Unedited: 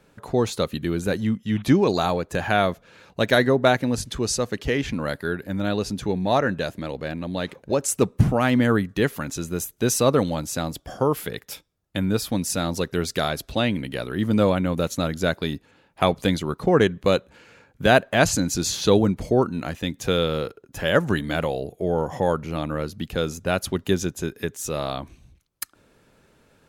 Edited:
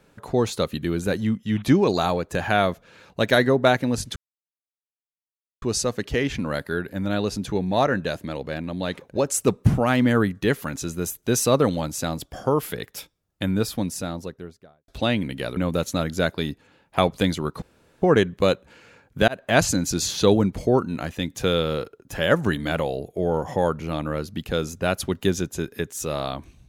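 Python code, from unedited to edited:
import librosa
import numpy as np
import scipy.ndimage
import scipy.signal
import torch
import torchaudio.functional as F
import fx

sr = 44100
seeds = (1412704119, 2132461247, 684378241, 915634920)

y = fx.studio_fade_out(x, sr, start_s=12.02, length_s=1.4)
y = fx.edit(y, sr, fx.insert_silence(at_s=4.16, length_s=1.46),
    fx.cut(start_s=14.11, length_s=0.5),
    fx.insert_room_tone(at_s=16.66, length_s=0.4),
    fx.fade_in_span(start_s=17.92, length_s=0.26), tone=tone)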